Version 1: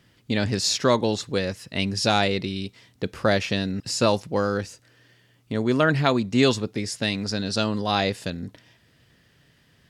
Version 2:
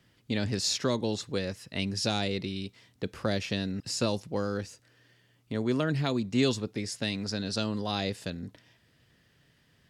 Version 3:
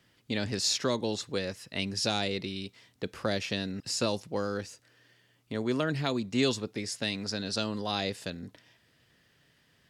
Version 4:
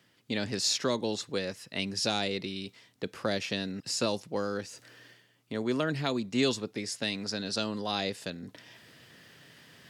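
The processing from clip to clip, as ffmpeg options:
-filter_complex "[0:a]acrossover=split=460|3000[a][b][c];[b]acompressor=threshold=-30dB:ratio=3[d];[a][d][c]amix=inputs=3:normalize=0,volume=-5.5dB"
-af "lowshelf=f=240:g=-6.5,volume=1dB"
-af "highpass=120,areverse,acompressor=mode=upward:threshold=-43dB:ratio=2.5,areverse"

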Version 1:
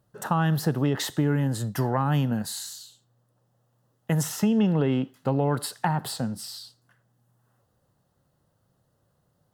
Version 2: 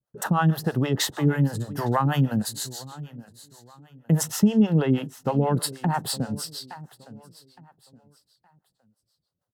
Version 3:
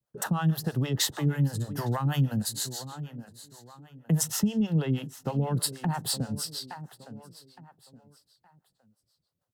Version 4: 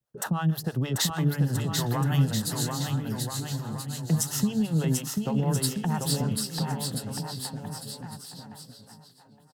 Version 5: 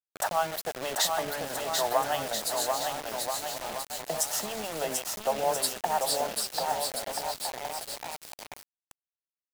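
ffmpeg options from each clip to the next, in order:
-filter_complex "[0:a]agate=range=-33dB:threshold=-57dB:ratio=3:detection=peak,aecho=1:1:866|1732|2598:0.126|0.039|0.0121,acrossover=split=470[a][b];[a]aeval=exprs='val(0)*(1-1/2+1/2*cos(2*PI*6.3*n/s))':c=same[c];[b]aeval=exprs='val(0)*(1-1/2-1/2*cos(2*PI*6.3*n/s))':c=same[d];[c][d]amix=inputs=2:normalize=0,volume=6.5dB"
-filter_complex "[0:a]acrossover=split=150|3000[a][b][c];[b]acompressor=threshold=-37dB:ratio=2[d];[a][d][c]amix=inputs=3:normalize=0"
-af "aecho=1:1:740|1332|1806|2184|2488:0.631|0.398|0.251|0.158|0.1"
-af "highpass=f=640:t=q:w=4.9,acrusher=bits=5:mix=0:aa=0.000001"

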